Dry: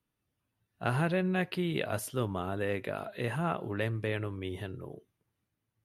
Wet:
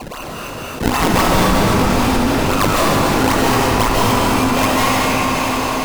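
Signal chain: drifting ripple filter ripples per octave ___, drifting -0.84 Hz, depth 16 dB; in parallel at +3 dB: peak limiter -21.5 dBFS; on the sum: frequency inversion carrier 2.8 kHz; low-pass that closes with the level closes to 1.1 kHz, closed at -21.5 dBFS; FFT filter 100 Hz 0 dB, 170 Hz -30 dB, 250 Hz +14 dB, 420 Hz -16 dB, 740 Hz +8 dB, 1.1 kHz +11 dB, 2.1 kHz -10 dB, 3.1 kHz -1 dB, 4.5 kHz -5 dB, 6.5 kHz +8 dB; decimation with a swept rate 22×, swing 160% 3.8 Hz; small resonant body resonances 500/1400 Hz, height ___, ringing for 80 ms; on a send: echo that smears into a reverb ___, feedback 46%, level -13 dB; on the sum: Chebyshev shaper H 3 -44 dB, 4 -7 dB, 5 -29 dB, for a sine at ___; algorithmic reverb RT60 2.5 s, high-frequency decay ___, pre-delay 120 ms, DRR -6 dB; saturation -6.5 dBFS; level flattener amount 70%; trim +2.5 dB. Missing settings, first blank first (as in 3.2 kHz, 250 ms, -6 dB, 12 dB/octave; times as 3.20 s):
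0.78, 6 dB, 652 ms, -10 dBFS, 0.95×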